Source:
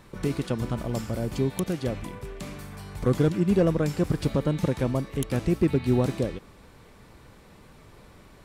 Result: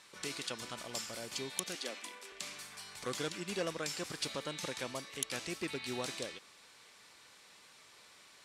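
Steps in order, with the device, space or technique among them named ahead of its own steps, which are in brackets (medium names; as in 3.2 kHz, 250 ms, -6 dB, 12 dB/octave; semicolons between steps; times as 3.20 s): 1.75–2.32 s: steep high-pass 210 Hz 48 dB/octave; piezo pickup straight into a mixer (low-pass 6.1 kHz 12 dB/octave; differentiator); trim +9 dB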